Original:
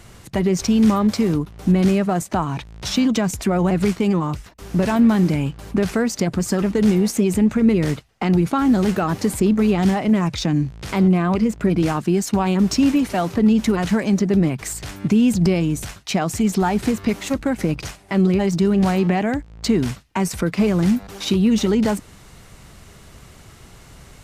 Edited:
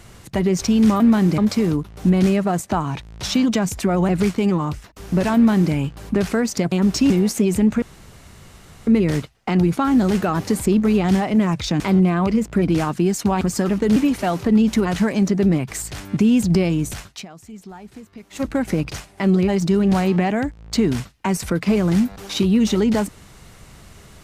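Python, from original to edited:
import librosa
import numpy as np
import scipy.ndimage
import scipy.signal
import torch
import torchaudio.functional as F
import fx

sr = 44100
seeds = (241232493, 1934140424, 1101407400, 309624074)

y = fx.edit(x, sr, fx.duplicate(start_s=4.97, length_s=0.38, to_s=1.0),
    fx.swap(start_s=6.34, length_s=0.55, other_s=12.49, other_length_s=0.38),
    fx.insert_room_tone(at_s=7.61, length_s=1.05),
    fx.cut(start_s=10.54, length_s=0.34),
    fx.fade_down_up(start_s=16.0, length_s=1.37, db=-19.5, fade_s=0.16), tone=tone)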